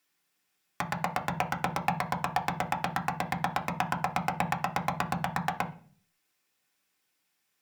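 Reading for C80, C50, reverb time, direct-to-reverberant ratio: 19.5 dB, 14.5 dB, 0.45 s, 2.5 dB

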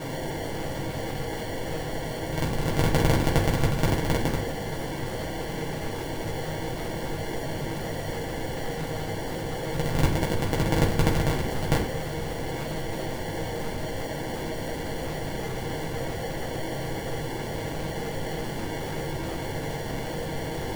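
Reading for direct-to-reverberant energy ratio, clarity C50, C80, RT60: −5.0 dB, 7.5 dB, 13.0 dB, 0.45 s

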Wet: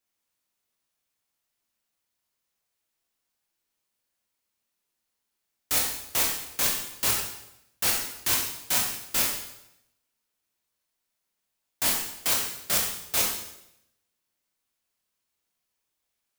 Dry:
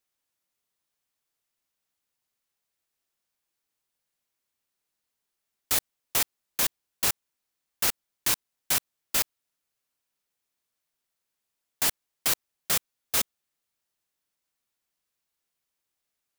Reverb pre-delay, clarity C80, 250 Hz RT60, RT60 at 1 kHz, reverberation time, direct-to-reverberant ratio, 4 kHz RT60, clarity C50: 15 ms, 6.0 dB, 0.85 s, 0.80 s, 0.85 s, −2.0 dB, 0.75 s, 3.5 dB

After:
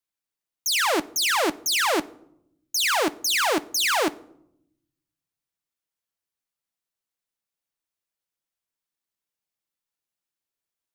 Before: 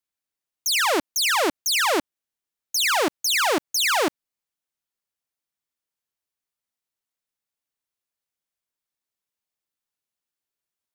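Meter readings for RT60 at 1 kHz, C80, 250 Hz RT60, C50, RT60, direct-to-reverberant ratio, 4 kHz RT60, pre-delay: 0.70 s, 24.5 dB, 1.3 s, 21.0 dB, 0.75 s, 12.0 dB, 0.45 s, 6 ms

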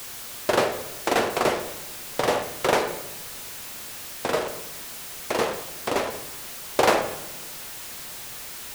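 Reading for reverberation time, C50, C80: 1.0 s, 9.0 dB, 12.0 dB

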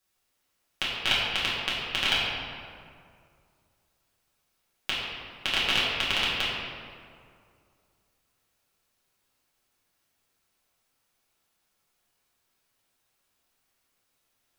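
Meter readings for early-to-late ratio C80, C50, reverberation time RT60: 0.5 dB, −1.0 dB, 2.3 s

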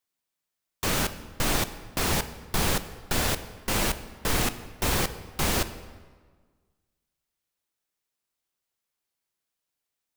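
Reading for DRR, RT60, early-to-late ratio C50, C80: 11.0 dB, 1.5 s, 13.0 dB, 14.5 dB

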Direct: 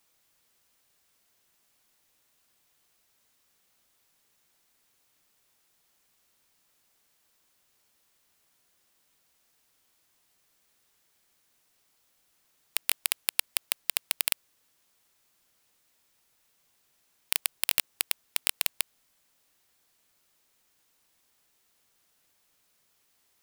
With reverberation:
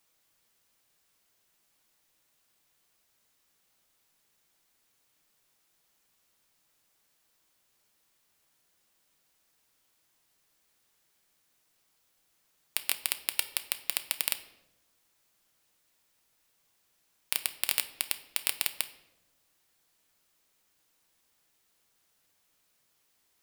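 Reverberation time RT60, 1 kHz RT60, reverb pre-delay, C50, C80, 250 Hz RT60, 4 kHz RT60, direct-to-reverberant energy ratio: 0.95 s, 0.80 s, 6 ms, 14.0 dB, 16.5 dB, 1.3 s, 0.65 s, 9.5 dB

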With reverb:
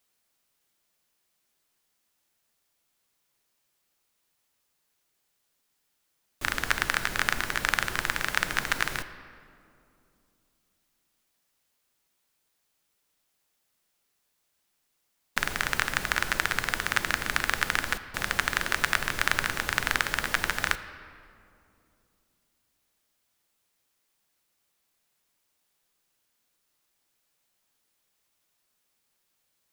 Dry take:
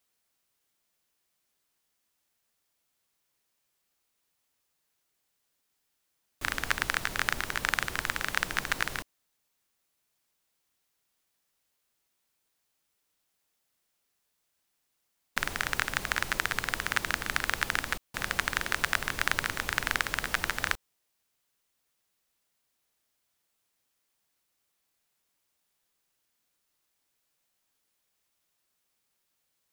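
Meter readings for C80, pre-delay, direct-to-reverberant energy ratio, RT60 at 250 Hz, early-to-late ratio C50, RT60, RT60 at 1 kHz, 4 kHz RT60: 13.5 dB, 3 ms, 11.0 dB, 3.3 s, 12.5 dB, 2.7 s, 2.4 s, 1.4 s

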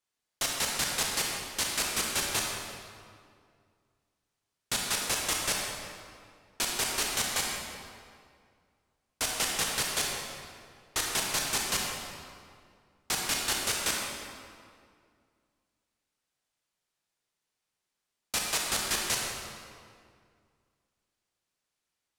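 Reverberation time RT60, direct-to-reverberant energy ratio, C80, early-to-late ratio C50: 2.2 s, −1.5 dB, 1.5 dB, 0.0 dB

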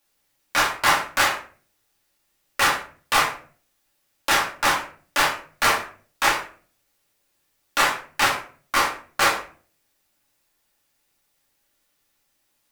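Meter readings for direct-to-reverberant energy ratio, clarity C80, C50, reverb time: −3.0 dB, 13.0 dB, 8.5 dB, 0.40 s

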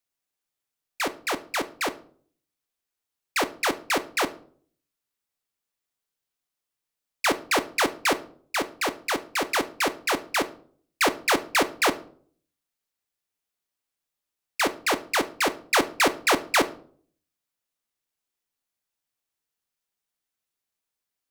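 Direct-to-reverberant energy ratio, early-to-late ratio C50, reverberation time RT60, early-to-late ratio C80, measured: 11.0 dB, 17.0 dB, 0.50 s, 21.5 dB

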